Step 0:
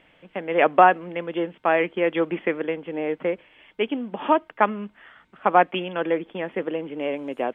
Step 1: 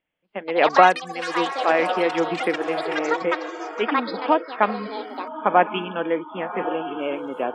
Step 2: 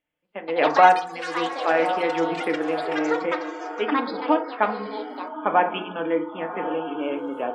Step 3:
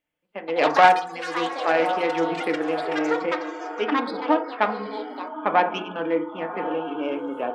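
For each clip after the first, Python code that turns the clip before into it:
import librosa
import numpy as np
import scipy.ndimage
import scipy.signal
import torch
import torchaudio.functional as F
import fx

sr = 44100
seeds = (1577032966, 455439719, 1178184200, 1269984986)

y1 = fx.echo_diffused(x, sr, ms=1129, feedback_pct=53, wet_db=-9.5)
y1 = fx.noise_reduce_blind(y1, sr, reduce_db=25)
y1 = fx.echo_pitch(y1, sr, ms=242, semitones=7, count=3, db_per_echo=-6.0)
y2 = fx.rev_fdn(y1, sr, rt60_s=0.52, lf_ratio=0.95, hf_ratio=0.4, size_ms=20.0, drr_db=5.0)
y2 = F.gain(torch.from_numpy(y2), -3.5).numpy()
y3 = fx.self_delay(y2, sr, depth_ms=0.14)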